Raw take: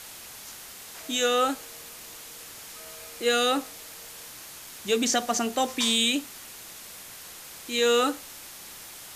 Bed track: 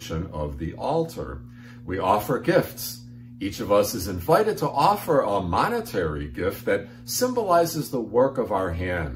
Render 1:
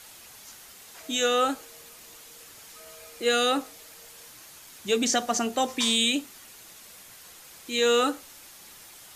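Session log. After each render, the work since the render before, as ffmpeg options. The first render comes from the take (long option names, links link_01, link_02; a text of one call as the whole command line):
ffmpeg -i in.wav -af "afftdn=noise_reduction=6:noise_floor=-44" out.wav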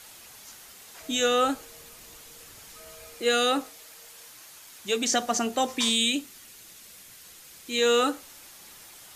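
ffmpeg -i in.wav -filter_complex "[0:a]asettb=1/sr,asplit=3[link_01][link_02][link_03];[link_01]atrim=end=1.014[link_04];[link_02]atrim=start=1.01:end=3.15,asetpts=PTS-STARTPTS,afade=type=in:duration=0.004:curve=qsin,afade=type=out:start_time=2.136:duration=0.004:curve=qsin,lowshelf=frequency=130:gain=10[link_05];[link_03]atrim=start=3.146[link_06];[link_04][link_05]acrossfade=duration=0.004:curve1=hsin:curve2=qsin[link_07];[link_07][link_06]acrossfade=duration=0.004:curve1=qsin:curve2=hsin,asettb=1/sr,asplit=3[link_08][link_09][link_10];[link_08]atrim=end=3.694[link_11];[link_09]atrim=start=3.69:end=5.12,asetpts=PTS-STARTPTS,afade=type=in:duration=0.004:curve=qsin,afade=type=out:start_time=1.426:duration=0.004:curve=qsin,lowshelf=frequency=430:gain=-6[link_12];[link_10]atrim=start=5.116[link_13];[link_11][link_12]acrossfade=duration=0.004:curve1=hsin:curve2=qsin[link_14];[link_14][link_13]acrossfade=duration=0.004:curve1=qsin:curve2=hsin,asettb=1/sr,asplit=3[link_15][link_16][link_17];[link_15]atrim=end=5.894[link_18];[link_16]atrim=start=5.89:end=7.7,asetpts=PTS-STARTPTS,afade=type=in:duration=0.004:curve=qsin,afade=type=out:start_time=1.806:duration=0.004:curve=qsin,equalizer=frequency=840:width_type=o:width=1.8:gain=-5.5[link_19];[link_17]atrim=start=7.696[link_20];[link_18][link_19]acrossfade=duration=0.004:curve1=hsin:curve2=qsin[link_21];[link_21][link_20]acrossfade=duration=0.004:curve1=qsin:curve2=hsin" out.wav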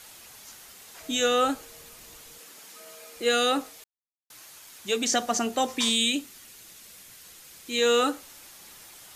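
ffmpeg -i in.wav -filter_complex "[0:a]asettb=1/sr,asplit=3[link_01][link_02][link_03];[link_01]atrim=end=2.384[link_04];[link_02]atrim=start=2.38:end=3.15,asetpts=PTS-STARTPTS,afade=type=in:duration=0.004:curve=qsin,afade=type=out:start_time=0.766:duration=0.004:curve=qsin,highpass=frequency=190:width=0.5412,highpass=frequency=190:width=1.3066[link_05];[link_03]atrim=start=3.146[link_06];[link_04][link_05]acrossfade=duration=0.004:curve1=hsin:curve2=qsin[link_07];[link_07][link_06]acrossfade=duration=0.004:curve1=qsin:curve2=hsin,asplit=3[link_08][link_09][link_10];[link_08]atrim=end=3.84,asetpts=PTS-STARTPTS,afade=type=out:start_time=3.836:duration=0.004:curve=hsin[link_11];[link_09]atrim=start=3.84:end=4.3,asetpts=PTS-STARTPTS,volume=0[link_12];[link_10]atrim=start=4.3,asetpts=PTS-STARTPTS,afade=type=in:duration=0.004:curve=hsin[link_13];[link_11][link_12][link_13]concat=n=3:v=0:a=1" out.wav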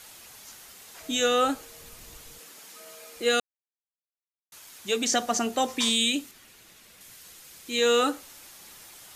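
ffmpeg -i in.wav -filter_complex "[0:a]asettb=1/sr,asplit=3[link_01][link_02][link_03];[link_01]atrim=end=1.824[link_04];[link_02]atrim=start=1.82:end=2.48,asetpts=PTS-STARTPTS,afade=type=in:duration=0.004:curve=qsin,afade=type=out:start_time=0.656:duration=0.004:curve=qsin,lowshelf=frequency=120:gain=10[link_05];[link_03]atrim=start=2.476[link_06];[link_04][link_05]acrossfade=duration=0.004:curve1=hsin:curve2=qsin[link_07];[link_07][link_06]acrossfade=duration=0.004:curve1=qsin:curve2=hsin,asettb=1/sr,asplit=3[link_08][link_09][link_10];[link_08]atrim=end=6.314[link_11];[link_09]atrim=start=6.31:end=7.01,asetpts=PTS-STARTPTS,afade=type=in:duration=0.004:curve=qsin,afade=type=out:start_time=0.696:duration=0.004:curve=qsin,bass=frequency=250:gain=0,treble=frequency=4000:gain=-7[link_12];[link_10]atrim=start=7.006[link_13];[link_11][link_12]acrossfade=duration=0.004:curve1=hsin:curve2=qsin[link_14];[link_14][link_13]acrossfade=duration=0.004:curve1=qsin:curve2=hsin,asplit=3[link_15][link_16][link_17];[link_15]atrim=end=3.4,asetpts=PTS-STARTPTS,afade=type=out:start_time=3.396:duration=0.004:curve=hsin[link_18];[link_16]atrim=start=3.4:end=4.52,asetpts=PTS-STARTPTS,volume=0[link_19];[link_17]atrim=start=4.52,asetpts=PTS-STARTPTS,afade=type=in:duration=0.004:curve=hsin[link_20];[link_18][link_19][link_20]concat=n=3:v=0:a=1" out.wav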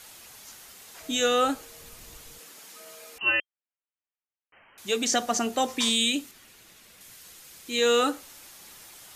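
ffmpeg -i in.wav -filter_complex "[0:a]asettb=1/sr,asplit=3[link_01][link_02][link_03];[link_01]atrim=end=3.184[link_04];[link_02]atrim=start=3.18:end=4.78,asetpts=PTS-STARTPTS,afade=type=in:duration=0.004:curve=qsin,afade=type=out:start_time=1.596:duration=0.004:curve=qsin,lowpass=frequency=2700:width_type=q:width=0.5098,lowpass=frequency=2700:width_type=q:width=0.6013,lowpass=frequency=2700:width_type=q:width=0.9,lowpass=frequency=2700:width_type=q:width=2.563,afreqshift=-3200[link_05];[link_03]atrim=start=4.776[link_06];[link_04][link_05]acrossfade=duration=0.004:curve1=hsin:curve2=qsin[link_07];[link_07][link_06]acrossfade=duration=0.004:curve1=qsin:curve2=hsin" out.wav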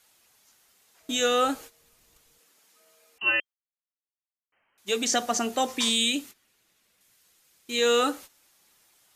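ffmpeg -i in.wav -af "agate=range=-15dB:threshold=-42dB:ratio=16:detection=peak,lowshelf=frequency=130:gain=-4.5" out.wav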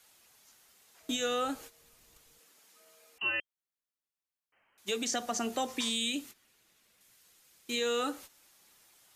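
ffmpeg -i in.wav -filter_complex "[0:a]alimiter=limit=-18dB:level=0:latency=1:release=360,acrossover=split=180[link_01][link_02];[link_02]acompressor=threshold=-37dB:ratio=1.5[link_03];[link_01][link_03]amix=inputs=2:normalize=0" out.wav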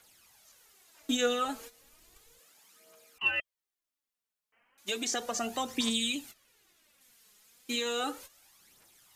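ffmpeg -i in.wav -af "aphaser=in_gain=1:out_gain=1:delay=4.9:decay=0.53:speed=0.34:type=triangular" out.wav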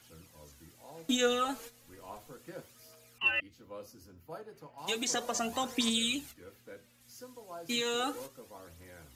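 ffmpeg -i in.wav -i bed.wav -filter_complex "[1:a]volume=-26.5dB[link_01];[0:a][link_01]amix=inputs=2:normalize=0" out.wav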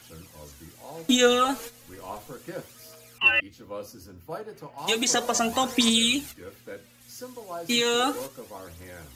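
ffmpeg -i in.wav -af "volume=9dB" out.wav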